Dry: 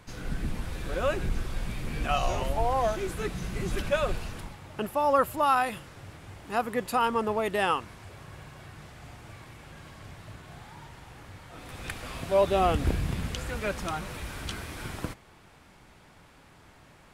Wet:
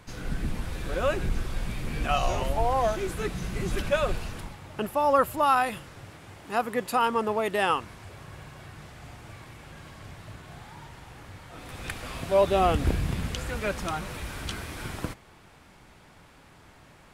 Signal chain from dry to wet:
0:06.05–0:07.70: high-pass filter 130 Hz 6 dB per octave
level +1.5 dB

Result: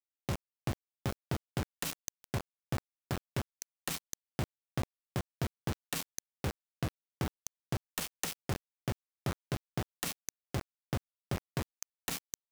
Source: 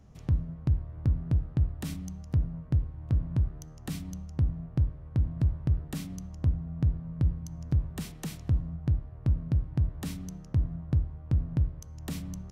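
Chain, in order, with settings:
adaptive Wiener filter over 15 samples
high-pass filter 1,100 Hz 6 dB per octave
notch filter 2,000 Hz, Q 25
bit reduction 7 bits
level +8.5 dB

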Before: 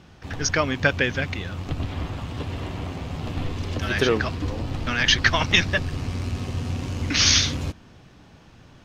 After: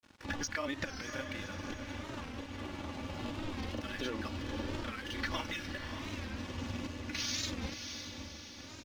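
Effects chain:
Butterworth low-pass 7,300 Hz
low-shelf EQ 92 Hz −10.5 dB
notch filter 680 Hz, Q 12
comb filter 3.5 ms, depth 69%
brickwall limiter −16 dBFS, peak gain reduction 13 dB
downward compressor 6 to 1, threshold −36 dBFS, peak gain reduction 13.5 dB
sample-and-hold tremolo
granular cloud 100 ms, grains 20 per second, spray 22 ms, pitch spread up and down by 0 semitones
dead-zone distortion −56.5 dBFS
on a send: feedback delay with all-pass diffusion 586 ms, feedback 51%, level −7 dB
on the sum: wow of a warped record 45 rpm, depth 160 cents
level +4 dB

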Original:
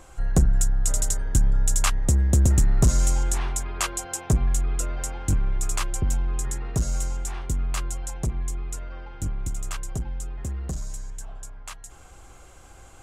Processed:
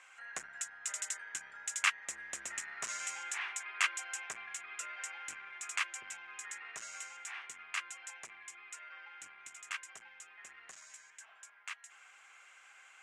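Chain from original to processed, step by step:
flat-topped band-pass 4,100 Hz, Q 0.7
high shelf with overshoot 3,000 Hz −11.5 dB, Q 1.5
level +4 dB

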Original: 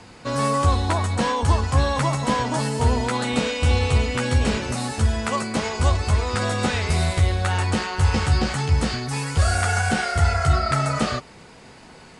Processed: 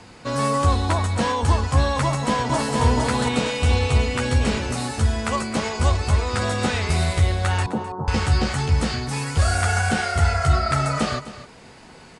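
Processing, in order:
0:07.66–0:08.08: elliptic band-pass filter 130–1,000 Hz, stop band 40 dB
single-tap delay 258 ms −15 dB
0:02.03–0:02.82: delay throw 460 ms, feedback 40%, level −3 dB

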